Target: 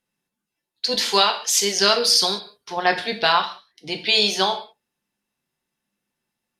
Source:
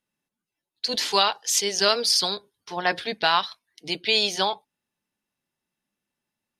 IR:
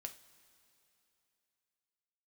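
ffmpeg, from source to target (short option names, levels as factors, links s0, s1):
-filter_complex "[0:a]asettb=1/sr,asplit=3[s0][s1][s2];[s0]atrim=end=3.324[s3];[s1]atrim=start=3.32:end=3.99,asetpts=PTS-STARTPTS,afade=t=in:d=0.004:c=qsin,afade=t=out:st=0.666:d=0.004:c=qsin,highshelf=f=3400:g=-8[s4];[s2]atrim=start=3.986[s5];[s3][s4]acrossfade=d=0.004:c1=hsin:c2=qsin[s6];[s6][s5]acrossfade=d=0.004:c1=qsin:c2=hsin[s7];[1:a]atrim=start_sample=2205,atrim=end_sample=6615,asetrate=33516,aresample=44100[s8];[s7][s8]afir=irnorm=-1:irlink=0,volume=2.11"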